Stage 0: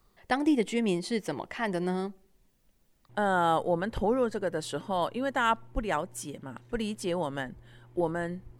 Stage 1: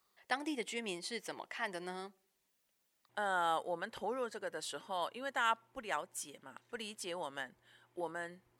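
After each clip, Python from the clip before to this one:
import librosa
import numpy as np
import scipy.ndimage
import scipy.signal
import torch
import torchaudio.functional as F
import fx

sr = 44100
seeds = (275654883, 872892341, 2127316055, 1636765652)

y = fx.highpass(x, sr, hz=1200.0, slope=6)
y = y * librosa.db_to_amplitude(-3.5)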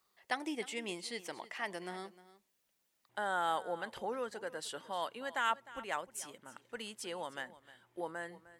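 y = x + 10.0 ** (-17.5 / 20.0) * np.pad(x, (int(306 * sr / 1000.0), 0))[:len(x)]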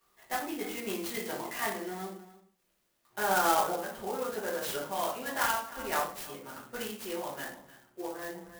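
y = fx.tremolo_random(x, sr, seeds[0], hz=3.5, depth_pct=55)
y = fx.room_shoebox(y, sr, seeds[1], volume_m3=49.0, walls='mixed', distance_m=1.7)
y = fx.clock_jitter(y, sr, seeds[2], jitter_ms=0.054)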